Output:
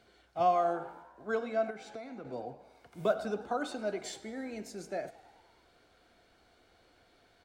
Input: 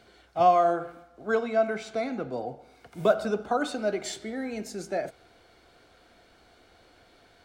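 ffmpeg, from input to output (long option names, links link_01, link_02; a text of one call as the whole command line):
ffmpeg -i in.wav -filter_complex "[0:a]asplit=7[link_01][link_02][link_03][link_04][link_05][link_06][link_07];[link_02]adelay=102,afreqshift=58,volume=-19.5dB[link_08];[link_03]adelay=204,afreqshift=116,volume=-23.5dB[link_09];[link_04]adelay=306,afreqshift=174,volume=-27.5dB[link_10];[link_05]adelay=408,afreqshift=232,volume=-31.5dB[link_11];[link_06]adelay=510,afreqshift=290,volume=-35.6dB[link_12];[link_07]adelay=612,afreqshift=348,volume=-39.6dB[link_13];[link_01][link_08][link_09][link_10][link_11][link_12][link_13]amix=inputs=7:normalize=0,asettb=1/sr,asplit=3[link_14][link_15][link_16];[link_14]atrim=end=1.704[link_17];[link_15]atrim=start=1.7:end=2.25,asetpts=PTS-STARTPTS,afade=type=in:duration=0.004:curve=qsin,afade=type=out:start_time=0.546:duration=0.004:curve=qsin,acompressor=threshold=-34dB:ratio=6[link_18];[link_16]atrim=start=2.246[link_19];[link_17][link_18]acrossfade=duration=0.004:curve1=hsin:curve2=qsin[link_20];[link_20][link_19]acrossfade=duration=0.004:curve1=qsin:curve2=hsin,volume=-7dB" out.wav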